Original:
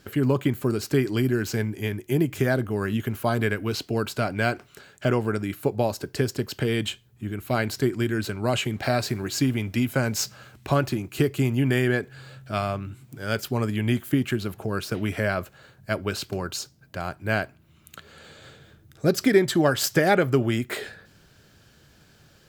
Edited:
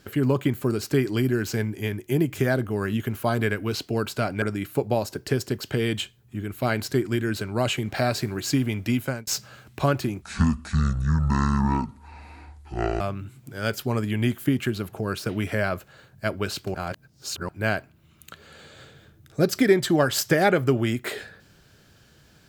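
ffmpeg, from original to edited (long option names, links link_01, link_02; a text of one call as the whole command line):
ffmpeg -i in.wav -filter_complex "[0:a]asplit=7[link_01][link_02][link_03][link_04][link_05][link_06][link_07];[link_01]atrim=end=4.422[link_08];[link_02]atrim=start=5.298:end=10.15,asetpts=PTS-STARTPTS,afade=type=out:start_time=4.572:duration=0.28[link_09];[link_03]atrim=start=10.15:end=11.104,asetpts=PTS-STARTPTS,afade=type=in:duration=0.004:curve=hsin[link_10];[link_04]atrim=start=11.1:end=12.66,asetpts=PTS-STARTPTS,asetrate=24696,aresample=44100[link_11];[link_05]atrim=start=12.656:end=16.402[link_12];[link_06]atrim=start=16.398:end=17.142,asetpts=PTS-STARTPTS,areverse[link_13];[link_07]atrim=start=17.138[link_14];[link_09][link_10]concat=n=2:v=0:a=1[link_15];[link_08][link_15]acrossfade=duration=0.004:curve1=hsin:curve2=hsin[link_16];[link_16][link_11]acrossfade=duration=0.004:curve1=hsin:curve2=hsin[link_17];[link_17][link_12]acrossfade=duration=0.004:curve1=hsin:curve2=hsin[link_18];[link_18][link_13]acrossfade=duration=0.004:curve1=hsin:curve2=hsin[link_19];[link_19][link_14]acrossfade=duration=0.004:curve1=hsin:curve2=hsin" out.wav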